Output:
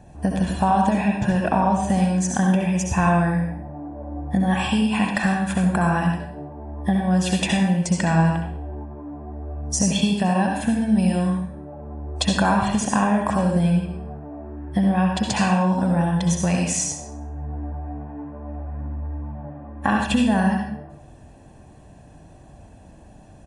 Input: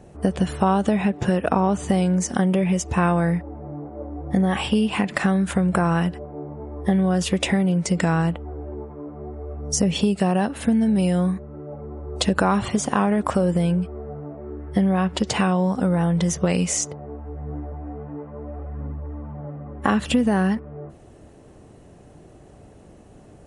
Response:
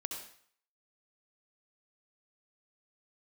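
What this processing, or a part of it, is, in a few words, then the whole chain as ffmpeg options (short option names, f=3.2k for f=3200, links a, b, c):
microphone above a desk: -filter_complex "[0:a]aecho=1:1:1.2:0.61[a];[1:a]atrim=start_sample=2205[b];[a][b]afir=irnorm=-1:irlink=0"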